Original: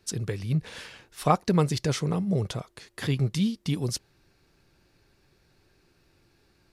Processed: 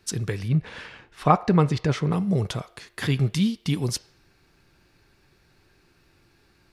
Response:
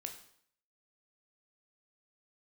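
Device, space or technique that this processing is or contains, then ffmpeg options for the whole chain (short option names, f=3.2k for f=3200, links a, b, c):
filtered reverb send: -filter_complex "[0:a]asplit=2[a][b];[b]highpass=f=520:w=0.5412,highpass=f=520:w=1.3066,lowpass=3.3k[c];[1:a]atrim=start_sample=2205[d];[c][d]afir=irnorm=-1:irlink=0,volume=-5.5dB[e];[a][e]amix=inputs=2:normalize=0,asettb=1/sr,asplit=3[f][g][h];[f]atrim=end=0.484[i];[g]atrim=start=0.48:end=2.12,asetpts=PTS-STARTPTS,afade=t=in:d=0.004:c=qsin,afade=t=out:st=1.636:d=0.004:c=qsin,aemphasis=mode=reproduction:type=75fm[j];[h]atrim=start=2.116[k];[i][j]acrossfade=d=0.004:c1=hsin:c2=qsin[l];[l][k]acrossfade=d=0.004:c1=qsin:c2=hsin,volume=3dB"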